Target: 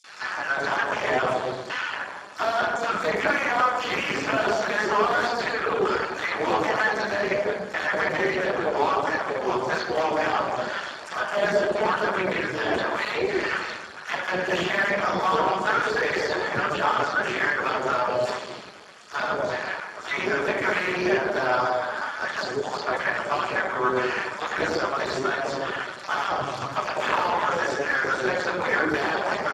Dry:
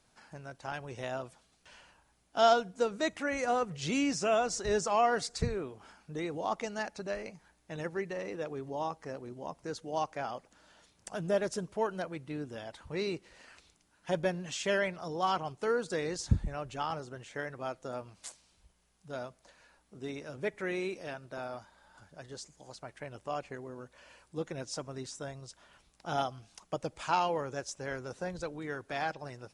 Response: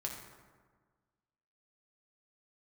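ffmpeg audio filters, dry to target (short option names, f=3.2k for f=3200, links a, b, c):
-filter_complex "[0:a]highpass=67,tiltshelf=f=640:g=-7.5,asplit=2[a][b];[b]highpass=f=720:p=1,volume=36dB,asoftclip=type=tanh:threshold=-8dB[c];[a][c]amix=inputs=2:normalize=0,lowpass=f=1.4k:p=1,volume=-6dB,acrossover=split=590|2400|4900[d][e][f][g];[d]acompressor=threshold=-33dB:ratio=4[h];[e]acompressor=threshold=-26dB:ratio=4[i];[f]acompressor=threshold=-41dB:ratio=4[j];[g]acompressor=threshold=-44dB:ratio=4[k];[h][i][j][k]amix=inputs=4:normalize=0,acrossover=split=100|4200[l][m][n];[l]acrusher=bits=5:mix=0:aa=0.000001[o];[m]acontrast=66[p];[o][p][n]amix=inputs=3:normalize=0,acrossover=split=640|5800[q][r][s];[r]adelay=40[t];[q]adelay=240[u];[u][t][s]amix=inputs=3:normalize=0[v];[1:a]atrim=start_sample=2205,afade=t=out:st=0.39:d=0.01,atrim=end_sample=17640[w];[v][w]afir=irnorm=-1:irlink=0" -ar 32000 -c:a libspeex -b:a 8k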